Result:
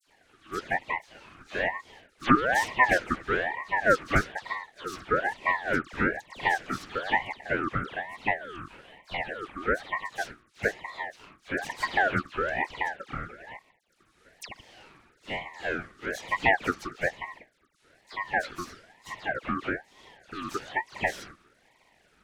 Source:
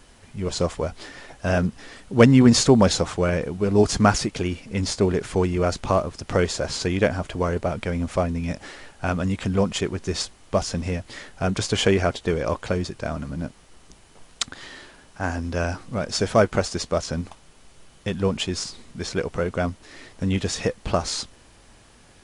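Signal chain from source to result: 7.72–9.94 s: high-order bell 4.4 kHz -9.5 dB 1.2 oct; half-wave rectifier; brick-wall FIR high-pass 360 Hz; tilt EQ -3.5 dB/octave; phase dispersion lows, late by 113 ms, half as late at 2.1 kHz; ring modulator with a swept carrier 1.1 kHz, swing 35%, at 1.1 Hz

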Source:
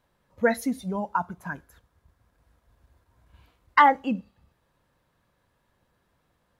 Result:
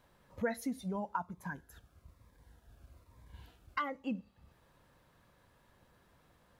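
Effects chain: compression 2:1, threshold -48 dBFS, peak gain reduction 19.5 dB; 1.23–4.06 s: Shepard-style phaser falling 1.1 Hz; trim +3.5 dB

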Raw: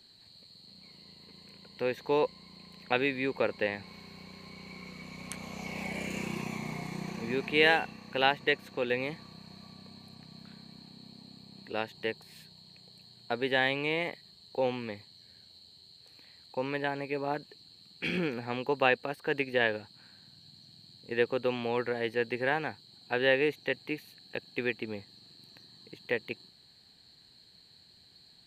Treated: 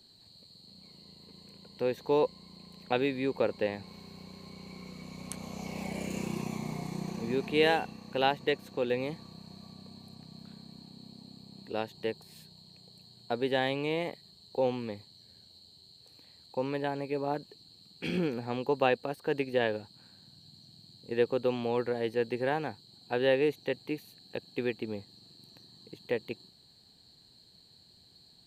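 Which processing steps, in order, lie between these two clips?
peaking EQ 2 kHz -9.5 dB 1.5 oct; trim +2 dB

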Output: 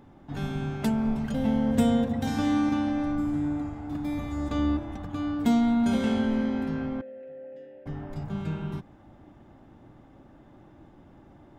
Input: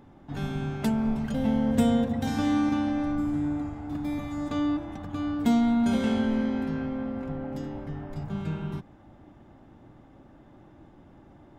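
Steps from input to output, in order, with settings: 4.17–5.06 s: octave divider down 2 oct, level -2 dB; 7.01–7.86 s: vowel filter e

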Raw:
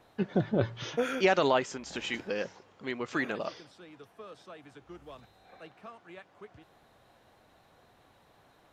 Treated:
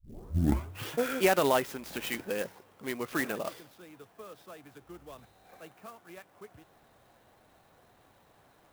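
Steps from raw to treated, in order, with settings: tape start-up on the opening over 0.93 s; sampling jitter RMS 0.037 ms

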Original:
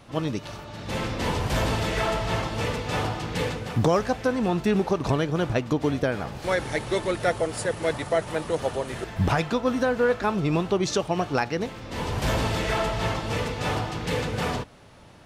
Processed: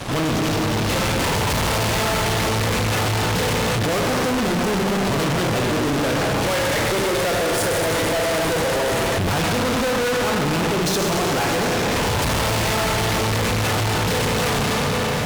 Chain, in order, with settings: Schroeder reverb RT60 2.9 s, combs from 28 ms, DRR 1 dB; fuzz box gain 46 dB, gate -52 dBFS; trim -6.5 dB

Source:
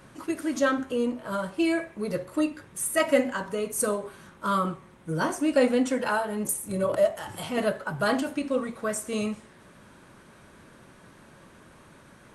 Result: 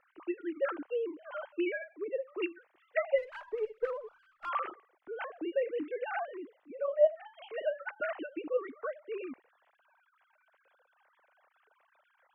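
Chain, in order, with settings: formants replaced by sine waves; gain riding within 3 dB 0.5 s; 3.18–4.49 s: sliding maximum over 3 samples; trim -8 dB

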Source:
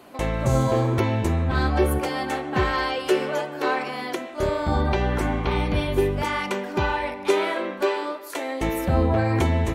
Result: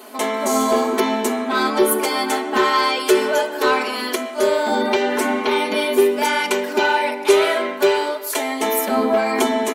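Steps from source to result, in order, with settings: brick-wall FIR high-pass 220 Hz; comb 4.7 ms, depth 89%; in parallel at -3 dB: saturation -16.5 dBFS, distortion -13 dB; on the sum: treble shelf 5.9 kHz +10.5 dB

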